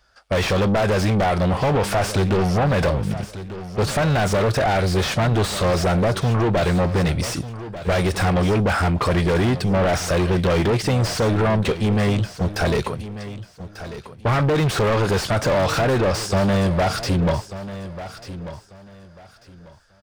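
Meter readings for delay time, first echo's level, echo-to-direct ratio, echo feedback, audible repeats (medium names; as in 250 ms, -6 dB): 1192 ms, -13.5 dB, -13.5 dB, 24%, 2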